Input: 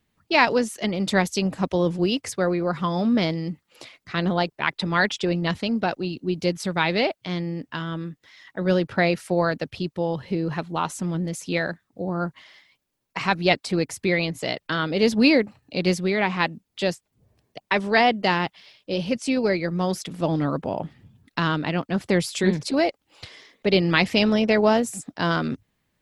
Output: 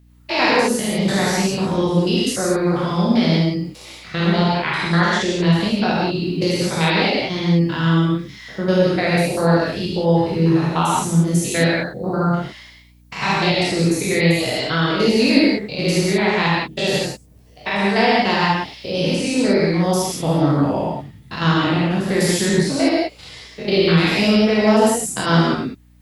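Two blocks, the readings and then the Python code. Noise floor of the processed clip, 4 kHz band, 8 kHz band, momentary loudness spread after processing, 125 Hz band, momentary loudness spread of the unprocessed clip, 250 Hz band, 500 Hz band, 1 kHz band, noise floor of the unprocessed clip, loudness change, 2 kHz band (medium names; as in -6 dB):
-45 dBFS, +6.5 dB, +10.5 dB, 9 LU, +9.0 dB, 11 LU, +6.5 dB, +5.0 dB, +5.0 dB, -77 dBFS, +5.5 dB, +4.0 dB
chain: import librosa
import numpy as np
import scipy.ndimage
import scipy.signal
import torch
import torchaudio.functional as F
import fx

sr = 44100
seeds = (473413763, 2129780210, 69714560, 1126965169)

p1 = fx.spec_steps(x, sr, hold_ms=100)
p2 = fx.high_shelf(p1, sr, hz=5100.0, db=9.5)
p3 = fx.rider(p2, sr, range_db=10, speed_s=0.5)
p4 = p2 + (p3 * 10.0 ** (1.5 / 20.0))
p5 = fx.rev_gated(p4, sr, seeds[0], gate_ms=210, shape='flat', drr_db=-5.0)
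p6 = fx.add_hum(p5, sr, base_hz=60, snr_db=32)
y = p6 * 10.0 ** (-5.5 / 20.0)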